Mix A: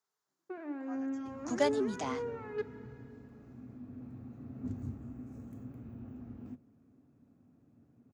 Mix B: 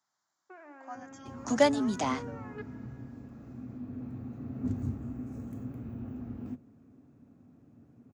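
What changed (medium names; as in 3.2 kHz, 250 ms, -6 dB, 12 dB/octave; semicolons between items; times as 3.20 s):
speech +7.5 dB; first sound: add band-pass 690–2700 Hz; second sound +6.5 dB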